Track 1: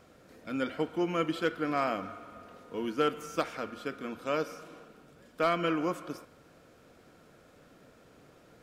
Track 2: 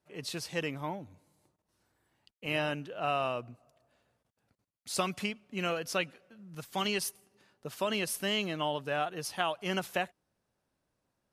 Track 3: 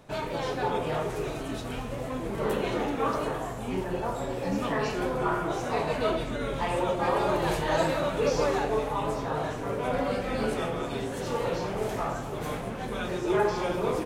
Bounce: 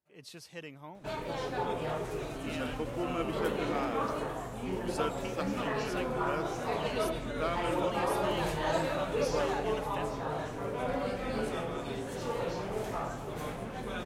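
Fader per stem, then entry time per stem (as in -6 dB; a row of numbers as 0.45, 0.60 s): -6.5, -10.5, -5.0 dB; 2.00, 0.00, 0.95 s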